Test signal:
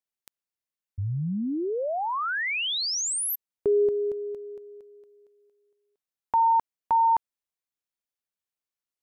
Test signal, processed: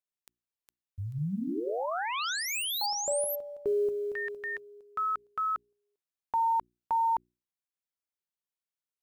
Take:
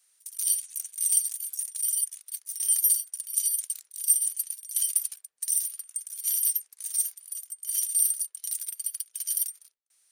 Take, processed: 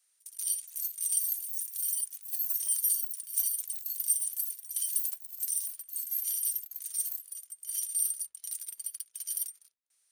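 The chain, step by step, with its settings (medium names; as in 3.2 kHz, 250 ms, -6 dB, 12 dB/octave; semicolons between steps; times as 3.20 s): block-companded coder 7-bit; ever faster or slower copies 492 ms, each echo +6 st, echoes 2; hum notches 60/120/180/240/300/360 Hz; dynamic bell 2 kHz, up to -5 dB, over -52 dBFS, Q 4.4; trim -6 dB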